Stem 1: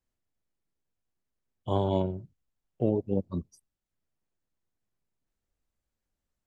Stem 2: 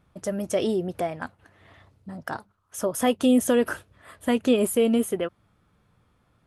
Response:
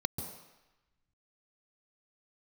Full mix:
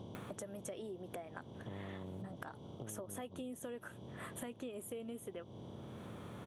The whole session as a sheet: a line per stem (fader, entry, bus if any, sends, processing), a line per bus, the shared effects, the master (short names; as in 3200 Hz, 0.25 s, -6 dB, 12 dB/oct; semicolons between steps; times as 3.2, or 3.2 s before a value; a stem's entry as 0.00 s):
-19.0 dB, 0.00 s, no send, per-bin compression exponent 0.2; graphic EQ 125/250/4000 Hz +10/+4/+8 dB; compressor 2:1, threshold -25 dBFS, peak gain reduction 7.5 dB
-0.5 dB, 0.15 s, no send, HPF 230 Hz; bell 5000 Hz -13.5 dB 0.28 oct; upward compressor, threshold -24 dBFS; auto duck -10 dB, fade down 0.45 s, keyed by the first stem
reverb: off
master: compressor 6:1, threshold -43 dBFS, peak gain reduction 15.5 dB